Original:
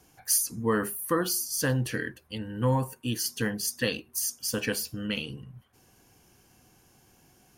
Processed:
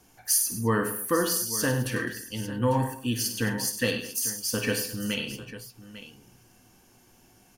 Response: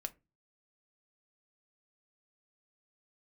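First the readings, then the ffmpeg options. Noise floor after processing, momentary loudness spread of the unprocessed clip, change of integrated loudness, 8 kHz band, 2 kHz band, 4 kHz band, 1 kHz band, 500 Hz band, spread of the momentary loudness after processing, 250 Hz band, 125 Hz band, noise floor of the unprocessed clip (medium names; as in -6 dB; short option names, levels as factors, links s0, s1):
-59 dBFS, 9 LU, +2.0 dB, +2.0 dB, +2.5 dB, +2.0 dB, +2.5 dB, +2.0 dB, 15 LU, +2.0 dB, +0.5 dB, -62 dBFS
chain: -filter_complex "[0:a]aecho=1:1:53|98|138|209|848:0.282|0.299|0.106|0.126|0.2[s0];[1:a]atrim=start_sample=2205,asetrate=61740,aresample=44100[s1];[s0][s1]afir=irnorm=-1:irlink=0,volume=2.11"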